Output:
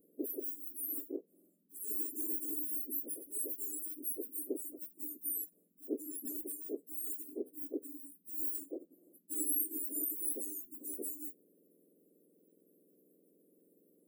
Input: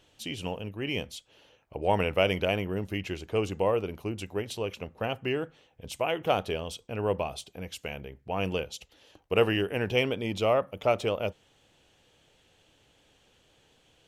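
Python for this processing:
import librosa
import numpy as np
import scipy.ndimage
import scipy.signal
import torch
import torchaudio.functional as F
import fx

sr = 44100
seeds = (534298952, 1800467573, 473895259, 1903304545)

y = fx.octave_mirror(x, sr, pivot_hz=1900.0)
y = scipy.signal.sosfilt(scipy.signal.cheby2(4, 50, [900.0, 5700.0], 'bandstop', fs=sr, output='sos'), y)
y = y * 10.0 ** (6.0 / 20.0)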